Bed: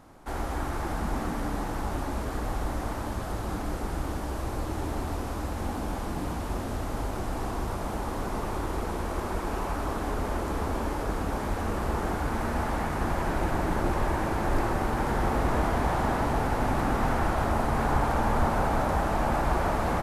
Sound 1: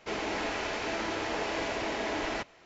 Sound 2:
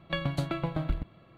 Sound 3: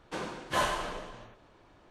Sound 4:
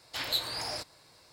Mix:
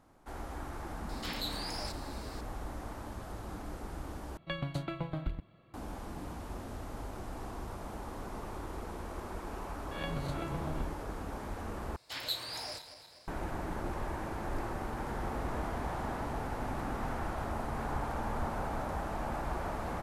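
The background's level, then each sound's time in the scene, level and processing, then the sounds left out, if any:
bed -10.5 dB
1.09 add 4 -10 dB + fast leveller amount 50%
4.37 replace with 2 -6 dB
9.91 add 2 -10 dB + spectral swells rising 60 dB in 0.60 s
11.96 replace with 4 -5.5 dB + regenerating reverse delay 0.123 s, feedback 70%, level -12 dB
not used: 1, 3

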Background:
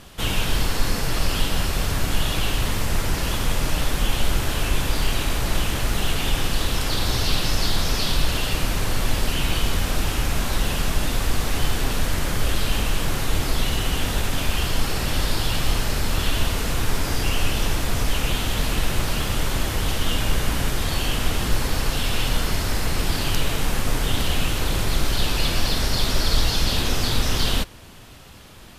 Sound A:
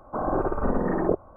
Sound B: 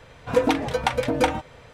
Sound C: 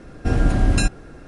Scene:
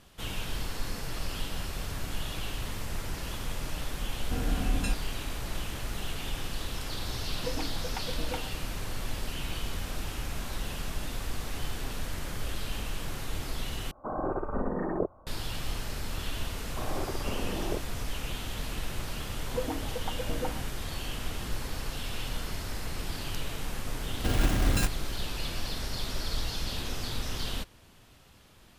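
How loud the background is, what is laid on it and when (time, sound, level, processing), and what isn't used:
background -12.5 dB
4.06 add C -14 dB + comb 4.1 ms, depth 58%
7.1 add B -17 dB
13.91 replace with A -6.5 dB
16.63 add A -11 dB
19.21 add B -13.5 dB + LPF 1100 Hz
23.99 add C -9 dB + block floating point 3-bit

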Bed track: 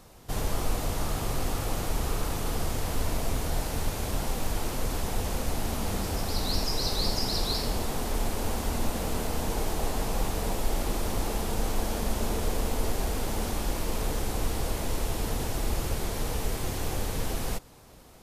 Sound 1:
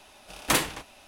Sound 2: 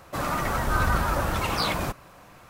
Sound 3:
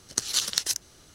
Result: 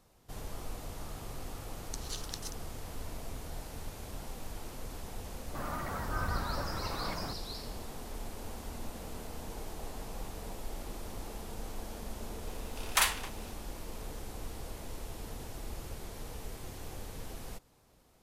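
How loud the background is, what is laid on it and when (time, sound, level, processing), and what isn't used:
bed track -13 dB
1.76 add 3 -17 dB
5.41 add 2 -11.5 dB + band shelf 5500 Hz -8.5 dB 2.5 oct
12.47 add 1 -2.5 dB + HPF 780 Hz 24 dB/oct

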